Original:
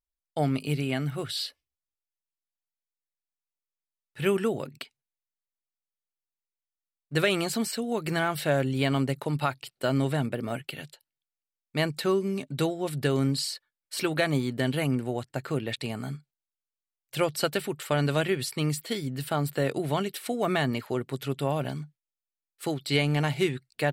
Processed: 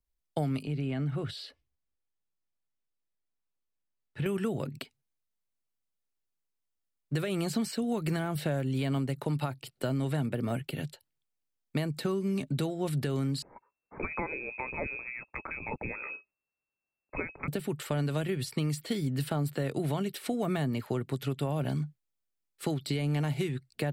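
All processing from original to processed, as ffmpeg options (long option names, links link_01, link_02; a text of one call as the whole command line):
ffmpeg -i in.wav -filter_complex "[0:a]asettb=1/sr,asplit=3[link_01][link_02][link_03];[link_01]atrim=end=0.634[link_04];[link_02]atrim=start=0.63:end=4.26,asetpts=PTS-STARTPTS,afade=type=in:duration=0.004:curve=qsin,afade=type=out:start_time=3.626:duration=0.004:curve=qsin,acompressor=threshold=-37dB:ratio=2.5:attack=3.2:release=140:knee=1:detection=peak,aemphasis=mode=reproduction:type=50fm[link_05];[link_03]atrim=start=4.256[link_06];[link_04][link_05]acrossfade=duration=0.004:curve1=hsin:curve2=qsin[link_07];[link_07][link_06]acrossfade=duration=0.004:curve1=qsin:curve2=hsin,asettb=1/sr,asplit=3[link_08][link_09][link_10];[link_08]atrim=end=13.424[link_11];[link_09]atrim=start=13.42:end=17.48,asetpts=PTS-STARTPTS,afade=type=in:duration=0.004:curve=qsin,afade=type=out:start_time=4.056:duration=0.004:curve=qsin,highshelf=frequency=2000:gain=11.5,acompressor=threshold=-25dB:ratio=2.5:attack=3.2:release=140:knee=1:detection=peak,lowpass=frequency=2300:width_type=q:width=0.5098,lowpass=frequency=2300:width_type=q:width=0.6013,lowpass=frequency=2300:width_type=q:width=0.9,lowpass=frequency=2300:width_type=q:width=2.563,afreqshift=-2700[link_12];[link_10]atrim=start=17.476[link_13];[link_11][link_12]acrossfade=duration=0.004:curve1=hsin:curve2=qsin[link_14];[link_14][link_13]acrossfade=duration=0.004:curve1=qsin:curve2=hsin,lowshelf=frequency=420:gain=10.5,alimiter=limit=-15dB:level=0:latency=1:release=352,acrossover=split=160|790|7500[link_15][link_16][link_17][link_18];[link_15]acompressor=threshold=-36dB:ratio=4[link_19];[link_16]acompressor=threshold=-32dB:ratio=4[link_20];[link_17]acompressor=threshold=-39dB:ratio=4[link_21];[link_18]acompressor=threshold=-47dB:ratio=4[link_22];[link_19][link_20][link_21][link_22]amix=inputs=4:normalize=0" out.wav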